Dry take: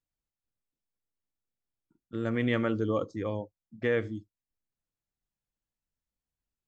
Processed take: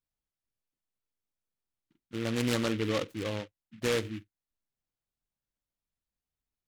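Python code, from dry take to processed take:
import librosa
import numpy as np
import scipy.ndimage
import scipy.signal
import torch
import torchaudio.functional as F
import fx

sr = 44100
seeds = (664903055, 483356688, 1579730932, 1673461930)

y = fx.noise_mod_delay(x, sr, seeds[0], noise_hz=2200.0, depth_ms=0.12)
y = y * librosa.db_to_amplitude(-1.5)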